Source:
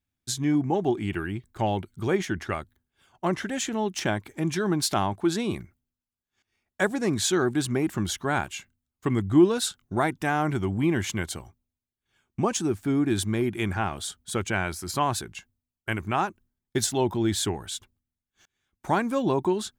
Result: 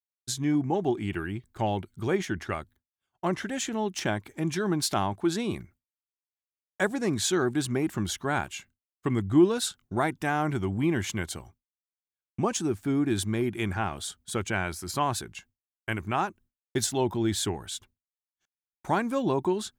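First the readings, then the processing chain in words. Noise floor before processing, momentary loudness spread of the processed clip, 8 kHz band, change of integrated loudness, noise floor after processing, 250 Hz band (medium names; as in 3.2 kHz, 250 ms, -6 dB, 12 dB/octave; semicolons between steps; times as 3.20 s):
under -85 dBFS, 9 LU, -2.0 dB, -2.0 dB, under -85 dBFS, -2.0 dB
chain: expander -49 dBFS; trim -2 dB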